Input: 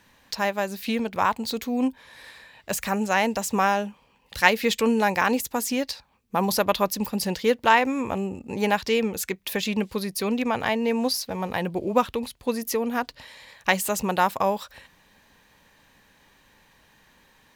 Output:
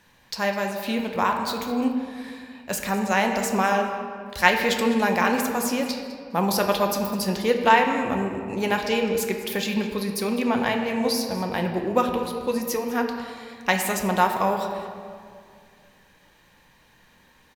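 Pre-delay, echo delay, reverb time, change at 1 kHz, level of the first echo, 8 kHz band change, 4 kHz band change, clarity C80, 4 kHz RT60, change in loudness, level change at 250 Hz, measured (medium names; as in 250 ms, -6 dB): 6 ms, 205 ms, 2.2 s, +1.5 dB, -16.0 dB, 0.0 dB, +0.5 dB, 6.0 dB, 1.2 s, +1.0 dB, +1.5 dB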